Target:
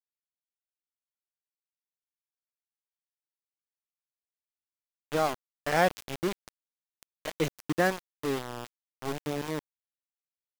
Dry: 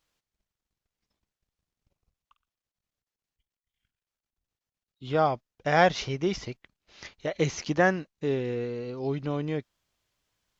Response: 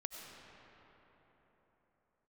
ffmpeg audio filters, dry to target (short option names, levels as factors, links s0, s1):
-af "adynamicequalizer=threshold=0.00794:dfrequency=290:dqfactor=3.4:tfrequency=290:tqfactor=3.4:attack=5:release=100:ratio=0.375:range=2:mode=boostabove:tftype=bell,aeval=exprs='val(0)*gte(abs(val(0)),0.0562)':c=same,volume=0.668"